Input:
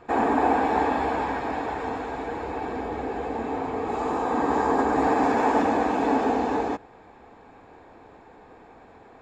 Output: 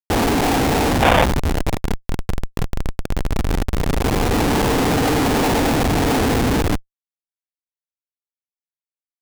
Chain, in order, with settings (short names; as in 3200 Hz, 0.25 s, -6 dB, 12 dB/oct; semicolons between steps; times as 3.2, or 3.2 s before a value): Schmitt trigger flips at -22.5 dBFS; spectral gain 1.03–1.24, 480–3700 Hz +10 dB; gain +9 dB